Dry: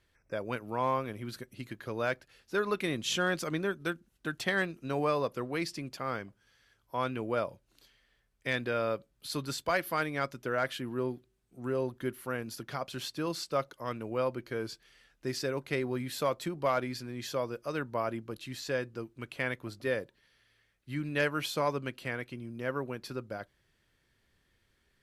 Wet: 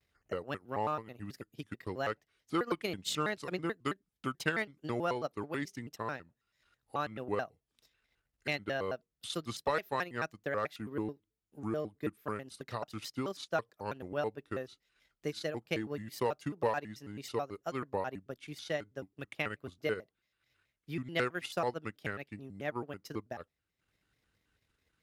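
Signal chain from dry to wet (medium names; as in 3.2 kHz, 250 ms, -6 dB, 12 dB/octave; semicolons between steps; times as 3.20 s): transient shaper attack +5 dB, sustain -10 dB; high-pass 41 Hz; vibrato with a chosen wave square 4.6 Hz, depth 250 cents; trim -5 dB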